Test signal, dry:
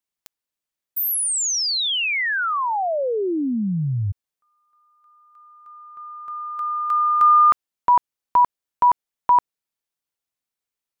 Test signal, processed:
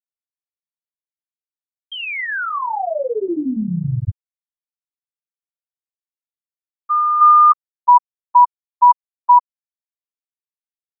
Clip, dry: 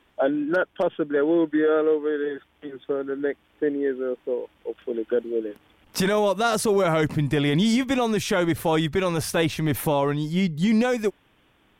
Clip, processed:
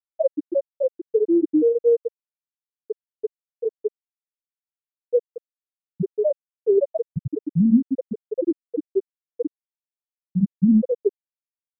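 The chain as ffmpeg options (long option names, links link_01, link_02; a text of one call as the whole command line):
ffmpeg -i in.wav -filter_complex "[0:a]asplit=2[link_01][link_02];[link_02]adelay=102,lowpass=frequency=910:poles=1,volume=-10dB,asplit=2[link_03][link_04];[link_04]adelay=102,lowpass=frequency=910:poles=1,volume=0.35,asplit=2[link_05][link_06];[link_06]adelay=102,lowpass=frequency=910:poles=1,volume=0.35,asplit=2[link_07][link_08];[link_08]adelay=102,lowpass=frequency=910:poles=1,volume=0.35[link_09];[link_01][link_03][link_05][link_07][link_09]amix=inputs=5:normalize=0,afftfilt=real='re*gte(hypot(re,im),1)':imag='im*gte(hypot(re,im),1)':win_size=1024:overlap=0.75,volume=6dB" out.wav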